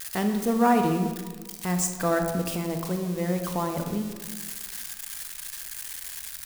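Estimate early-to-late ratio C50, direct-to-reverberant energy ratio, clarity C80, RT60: 6.0 dB, 5.0 dB, 8.0 dB, 1.4 s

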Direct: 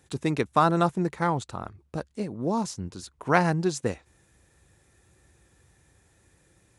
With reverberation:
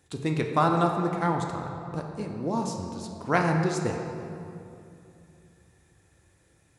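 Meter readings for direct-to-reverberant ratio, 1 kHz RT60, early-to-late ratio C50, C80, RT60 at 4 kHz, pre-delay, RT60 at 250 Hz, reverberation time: 2.0 dB, 2.6 s, 4.0 dB, 5.0 dB, 1.6 s, 3 ms, 3.2 s, 2.7 s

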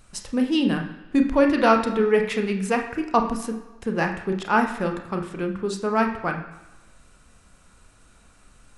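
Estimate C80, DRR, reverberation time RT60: 10.5 dB, 3.0 dB, 1.1 s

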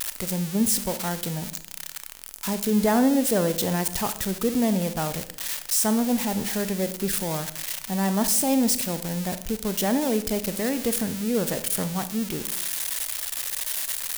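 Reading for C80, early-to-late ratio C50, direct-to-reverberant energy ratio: 16.5 dB, 13.0 dB, 11.0 dB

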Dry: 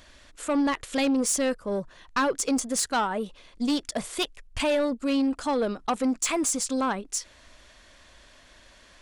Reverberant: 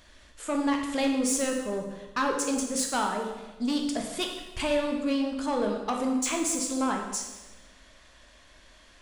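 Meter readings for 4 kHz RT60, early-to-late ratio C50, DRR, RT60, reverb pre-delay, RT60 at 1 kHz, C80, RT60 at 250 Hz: 1.0 s, 4.5 dB, 1.5 dB, 1.2 s, 11 ms, 1.1 s, 6.5 dB, 1.4 s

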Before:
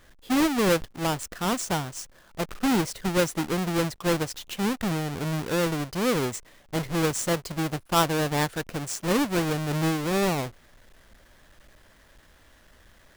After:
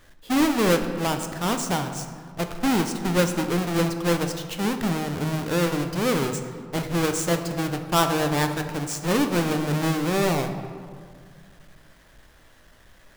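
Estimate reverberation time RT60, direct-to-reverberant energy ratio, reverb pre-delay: 2.1 s, 6.0 dB, 3 ms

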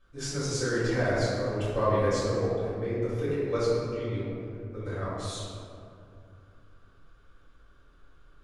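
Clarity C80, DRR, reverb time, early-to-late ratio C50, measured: -1.0 dB, -13.0 dB, 2.5 s, -3.0 dB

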